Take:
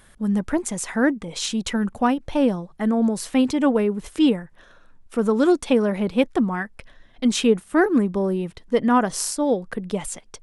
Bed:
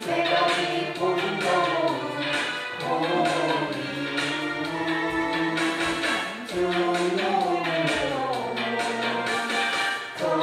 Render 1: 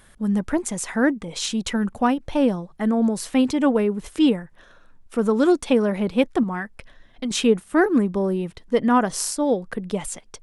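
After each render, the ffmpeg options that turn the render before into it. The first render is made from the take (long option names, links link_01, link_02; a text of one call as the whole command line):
ffmpeg -i in.wav -filter_complex "[0:a]asettb=1/sr,asplit=3[link_01][link_02][link_03];[link_01]atrim=end=6.434[link_04];[link_02]atrim=start=6.43:end=7.31,asetpts=PTS-STARTPTS,afade=type=in:duration=0.004:curve=qsin,afade=type=out:start_time=0.876:duration=0.004:curve=qsin,acompressor=threshold=-23dB:ratio=6:attack=3.2:release=140:knee=1:detection=peak[link_05];[link_03]atrim=start=7.306[link_06];[link_04][link_05]acrossfade=duration=0.004:curve1=hsin:curve2=qsin[link_07];[link_07][link_06]acrossfade=duration=0.004:curve1=qsin:curve2=hsin" out.wav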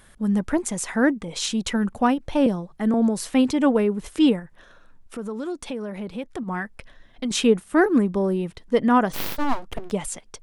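ffmpeg -i in.wav -filter_complex "[0:a]asettb=1/sr,asplit=3[link_01][link_02][link_03];[link_01]atrim=end=2.464[link_04];[link_02]atrim=start=2.46:end=2.94,asetpts=PTS-STARTPTS,afade=type=in:duration=0.004:curve=qsin,afade=type=out:start_time=0.476:duration=0.004:curve=qsin,acrossover=split=490|3000[link_05][link_06][link_07];[link_06]acompressor=threshold=-30dB:ratio=6:attack=3.2:release=140:knee=2.83:detection=peak[link_08];[link_05][link_08][link_07]amix=inputs=3:normalize=0[link_09];[link_03]atrim=start=2.936[link_10];[link_04][link_09]acrossfade=duration=0.004:curve1=hsin:curve2=qsin[link_11];[link_11][link_10]acrossfade=duration=0.004:curve1=qsin:curve2=hsin,asplit=3[link_12][link_13][link_14];[link_12]afade=type=out:start_time=4.39:duration=0.02[link_15];[link_13]acompressor=threshold=-33dB:ratio=2.5:attack=3.2:release=140:knee=1:detection=peak,afade=type=in:start_time=4.39:duration=0.02,afade=type=out:start_time=6.47:duration=0.02[link_16];[link_14]afade=type=in:start_time=6.47:duration=0.02[link_17];[link_15][link_16][link_17]amix=inputs=3:normalize=0,asplit=3[link_18][link_19][link_20];[link_18]afade=type=out:start_time=9.12:duration=0.02[link_21];[link_19]aeval=exprs='abs(val(0))':channel_layout=same,afade=type=in:start_time=9.12:duration=0.02,afade=type=out:start_time=9.9:duration=0.02[link_22];[link_20]afade=type=in:start_time=9.9:duration=0.02[link_23];[link_21][link_22][link_23]amix=inputs=3:normalize=0" out.wav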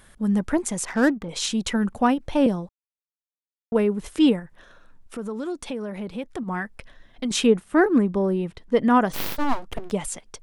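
ffmpeg -i in.wav -filter_complex "[0:a]asettb=1/sr,asplit=3[link_01][link_02][link_03];[link_01]atrim=end=0.854[link_04];[link_02]atrim=start=0.85:end=1.29,asetpts=PTS-STARTPTS,afade=type=in:duration=0.004:curve=qsin,afade=type=out:start_time=0.436:duration=0.004:curve=qsin,adynamicsmooth=sensitivity=6:basefreq=1200[link_05];[link_03]atrim=start=1.286[link_06];[link_04][link_05]acrossfade=duration=0.004:curve1=hsin:curve2=qsin[link_07];[link_07][link_06]acrossfade=duration=0.004:curve1=qsin:curve2=hsin,asettb=1/sr,asplit=3[link_08][link_09][link_10];[link_08]atrim=end=7.464[link_11];[link_09]atrim=start=7.46:end=8.79,asetpts=PTS-STARTPTS,afade=type=in:duration=0.004:curve=qsin,afade=type=out:start_time=1.326:duration=0.004:curve=qsin,highshelf=frequency=5400:gain=-7.5[link_12];[link_10]atrim=start=8.786[link_13];[link_11][link_12]acrossfade=duration=0.004:curve1=hsin:curve2=qsin[link_14];[link_14][link_13]acrossfade=duration=0.004:curve1=qsin:curve2=hsin,asplit=3[link_15][link_16][link_17];[link_15]atrim=end=2.69,asetpts=PTS-STARTPTS,afade=type=out:start_time=2.686:duration=0.004:curve=hsin[link_18];[link_16]atrim=start=2.69:end=3.72,asetpts=PTS-STARTPTS,volume=0[link_19];[link_17]atrim=start=3.72,asetpts=PTS-STARTPTS,afade=type=in:duration=0.004:curve=hsin[link_20];[link_18][link_19][link_20]concat=n=3:v=0:a=1" out.wav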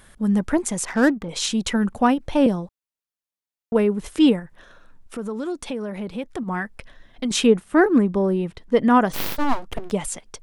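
ffmpeg -i in.wav -af "volume=2dB" out.wav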